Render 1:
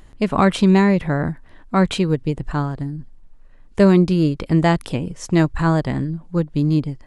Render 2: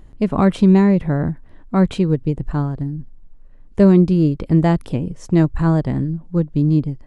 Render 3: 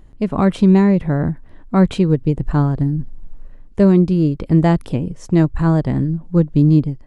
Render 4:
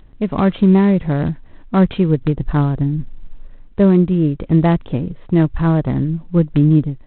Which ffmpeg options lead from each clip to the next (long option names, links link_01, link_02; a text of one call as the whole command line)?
ffmpeg -i in.wav -af "tiltshelf=frequency=750:gain=5.5,volume=-2.5dB" out.wav
ffmpeg -i in.wav -af "dynaudnorm=framelen=170:gausssize=5:maxgain=15.5dB,volume=-1.5dB" out.wav
ffmpeg -i in.wav -ar 8000 -c:a adpcm_g726 -b:a 24k out.wav